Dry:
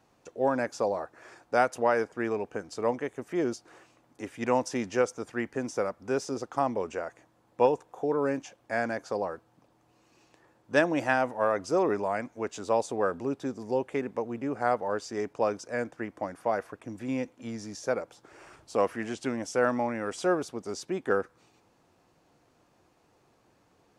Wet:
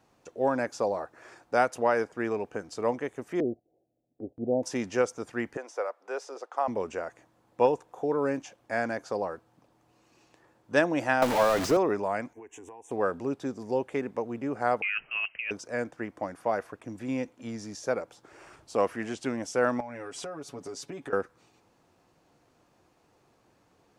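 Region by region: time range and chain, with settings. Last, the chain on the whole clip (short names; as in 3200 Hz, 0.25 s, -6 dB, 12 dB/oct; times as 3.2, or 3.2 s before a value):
3.4–4.63 steep low-pass 730 Hz 72 dB/oct + gate -54 dBFS, range -14 dB
5.57–6.68 HPF 480 Hz 24 dB/oct + high shelf 3600 Hz -10.5 dB
11.22–11.77 zero-crossing step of -27.5 dBFS + high shelf 6000 Hz -5 dB + three-band squash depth 100%
12.33–12.91 fixed phaser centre 880 Hz, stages 8 + compressor 16:1, threshold -42 dBFS + Butterworth band-stop 4400 Hz, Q 1.9
14.82–15.51 negative-ratio compressor -31 dBFS + inverted band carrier 3000 Hz
19.8–21.13 comb 7.1 ms, depth 82% + compressor 10:1, threshold -35 dBFS
whole clip: dry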